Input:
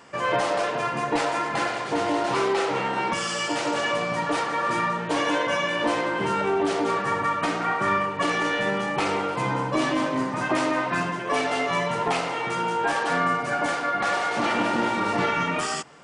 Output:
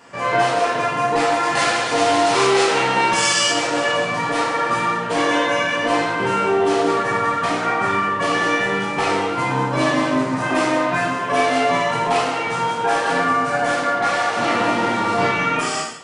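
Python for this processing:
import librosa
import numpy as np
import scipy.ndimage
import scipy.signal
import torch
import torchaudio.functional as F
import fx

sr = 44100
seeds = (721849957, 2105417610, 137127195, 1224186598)

y = fx.high_shelf(x, sr, hz=2500.0, db=9.5, at=(1.43, 3.5))
y = fx.rev_gated(y, sr, seeds[0], gate_ms=260, shape='falling', drr_db=-4.0)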